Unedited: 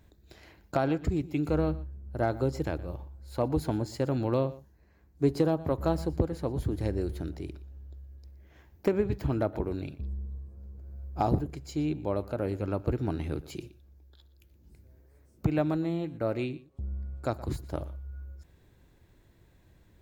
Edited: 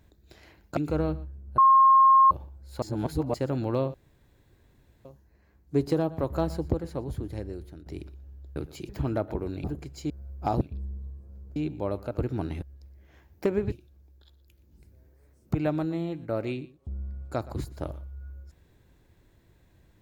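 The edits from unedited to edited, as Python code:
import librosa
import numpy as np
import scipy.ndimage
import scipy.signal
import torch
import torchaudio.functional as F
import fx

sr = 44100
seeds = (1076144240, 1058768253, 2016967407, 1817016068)

y = fx.edit(x, sr, fx.cut(start_s=0.77, length_s=0.59),
    fx.bleep(start_s=2.17, length_s=0.73, hz=1070.0, db=-13.5),
    fx.reverse_span(start_s=3.41, length_s=0.52),
    fx.insert_room_tone(at_s=4.53, length_s=1.11),
    fx.fade_out_to(start_s=6.2, length_s=1.14, floor_db=-12.5),
    fx.swap(start_s=8.04, length_s=1.1, other_s=13.31, other_length_s=0.33),
    fx.swap(start_s=9.89, length_s=0.95, other_s=11.35, other_length_s=0.46),
    fx.cut(start_s=12.36, length_s=0.44), tone=tone)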